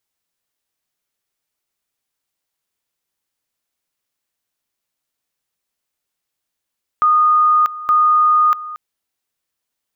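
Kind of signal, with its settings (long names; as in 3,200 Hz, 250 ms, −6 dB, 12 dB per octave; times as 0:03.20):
tone at two levels in turn 1,230 Hz −9.5 dBFS, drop 16.5 dB, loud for 0.64 s, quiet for 0.23 s, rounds 2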